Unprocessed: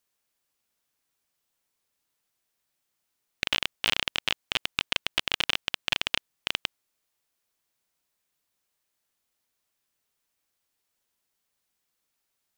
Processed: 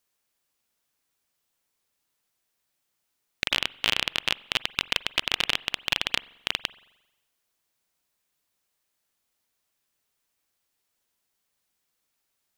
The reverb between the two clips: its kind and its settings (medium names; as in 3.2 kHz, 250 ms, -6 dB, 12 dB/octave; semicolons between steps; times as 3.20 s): spring tank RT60 1 s, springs 44 ms, chirp 55 ms, DRR 20 dB; trim +1.5 dB